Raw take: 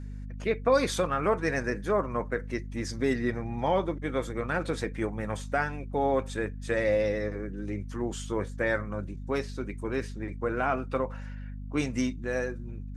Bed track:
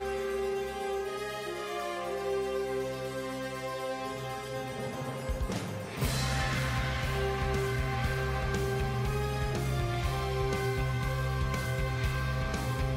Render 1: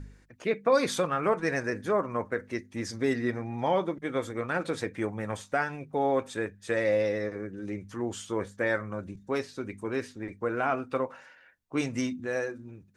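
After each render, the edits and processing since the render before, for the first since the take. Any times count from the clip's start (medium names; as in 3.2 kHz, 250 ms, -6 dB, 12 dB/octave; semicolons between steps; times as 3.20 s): de-hum 50 Hz, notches 5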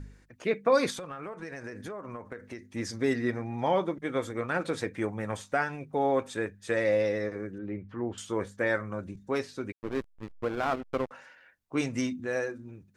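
0.90–2.63 s: compression 20:1, threshold -35 dBFS; 7.58–8.18 s: distance through air 420 m; 9.72–11.11 s: hysteresis with a dead band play -27.5 dBFS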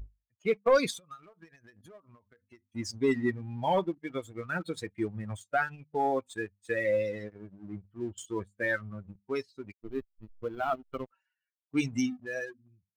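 expander on every frequency bin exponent 2; waveshaping leveller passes 1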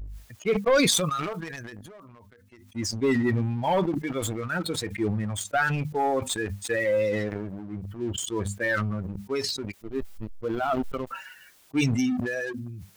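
waveshaping leveller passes 1; decay stretcher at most 24 dB/s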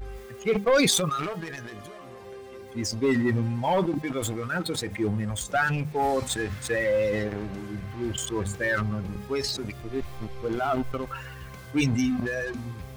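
add bed track -11 dB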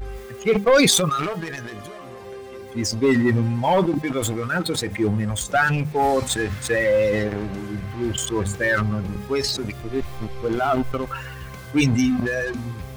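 trim +5.5 dB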